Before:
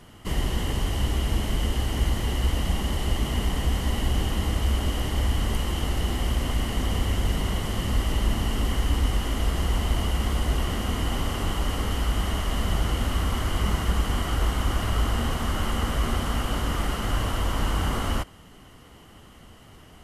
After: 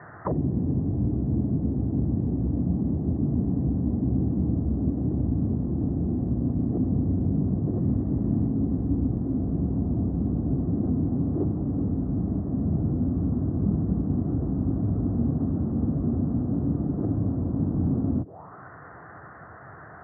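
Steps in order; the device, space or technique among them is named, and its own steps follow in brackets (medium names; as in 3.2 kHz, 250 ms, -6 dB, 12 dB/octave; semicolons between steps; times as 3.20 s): low-pass 1.5 kHz 24 dB/octave; envelope filter bass rig (touch-sensitive low-pass 250–1800 Hz down, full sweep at -22.5 dBFS; cabinet simulation 87–2100 Hz, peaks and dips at 140 Hz +4 dB, 230 Hz -9 dB, 690 Hz +6 dB, 1.8 kHz +8 dB); 7.79–8.47 s: treble shelf 2.6 kHz +10.5 dB; trim +3.5 dB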